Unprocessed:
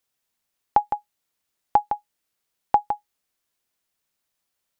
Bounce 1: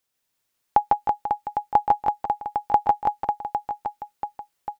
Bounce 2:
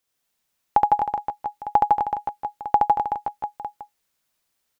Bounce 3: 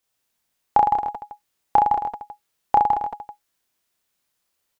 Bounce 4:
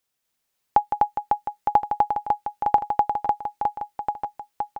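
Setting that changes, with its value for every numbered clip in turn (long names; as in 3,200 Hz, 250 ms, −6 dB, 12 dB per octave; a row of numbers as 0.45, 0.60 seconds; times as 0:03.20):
reverse bouncing-ball delay, first gap: 150, 70, 30, 250 milliseconds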